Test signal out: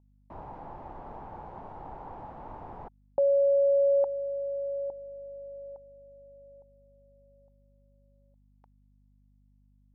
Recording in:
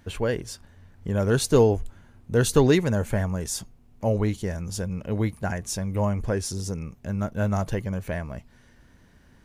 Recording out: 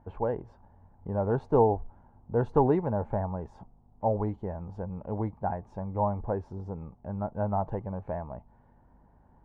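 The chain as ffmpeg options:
ffmpeg -i in.wav -af "aeval=exprs='0.708*(cos(1*acos(clip(val(0)/0.708,-1,1)))-cos(1*PI/2))+0.00891*(cos(3*acos(clip(val(0)/0.708,-1,1)))-cos(3*PI/2))':channel_layout=same,aeval=exprs='val(0)+0.00178*(sin(2*PI*50*n/s)+sin(2*PI*2*50*n/s)/2+sin(2*PI*3*50*n/s)/3+sin(2*PI*4*50*n/s)/4+sin(2*PI*5*50*n/s)/5)':channel_layout=same,lowpass=frequency=860:width_type=q:width=4.9,volume=-7dB" out.wav

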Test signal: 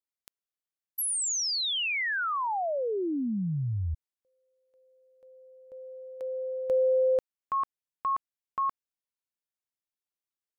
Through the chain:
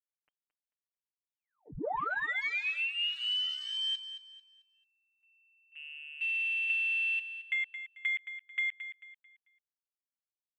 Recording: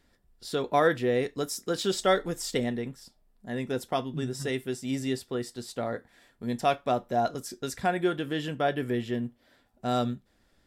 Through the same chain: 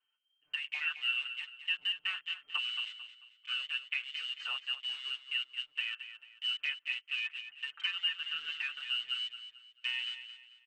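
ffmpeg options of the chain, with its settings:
ffmpeg -i in.wav -af "lowpass=frequency=2700:width_type=q:width=0.5098,lowpass=frequency=2700:width_type=q:width=0.6013,lowpass=frequency=2700:width_type=q:width=0.9,lowpass=frequency=2700:width_type=q:width=2.563,afreqshift=-3200,acompressor=threshold=-31dB:ratio=6:attack=21:release=682:knee=1:detection=peak,afwtdn=0.01,aecho=1:1:6.7:0.79,aecho=1:1:221|442|663|884:0.282|0.093|0.0307|0.0101,volume=-3dB" out.wav

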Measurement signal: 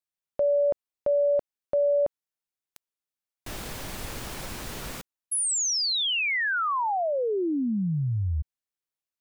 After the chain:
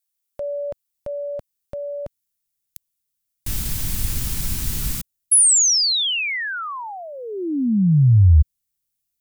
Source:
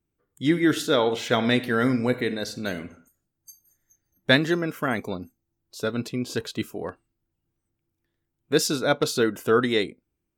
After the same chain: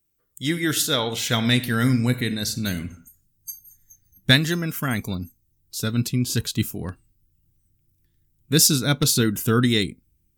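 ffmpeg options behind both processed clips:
ffmpeg -i in.wav -af "asubboost=boost=12:cutoff=170,crystalizer=i=5:c=0,volume=-3.5dB" out.wav

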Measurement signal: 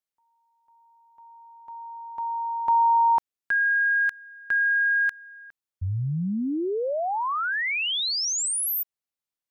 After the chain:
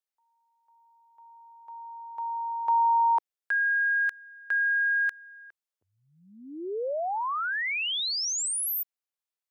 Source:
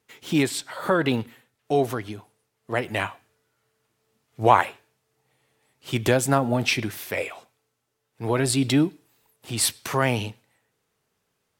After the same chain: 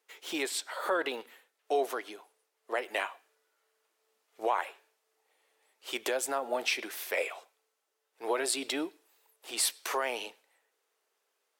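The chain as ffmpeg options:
ffmpeg -i in.wav -af "alimiter=limit=-13.5dB:level=0:latency=1:release=249,highpass=frequency=400:width=0.5412,highpass=frequency=400:width=1.3066,volume=-3dB" out.wav

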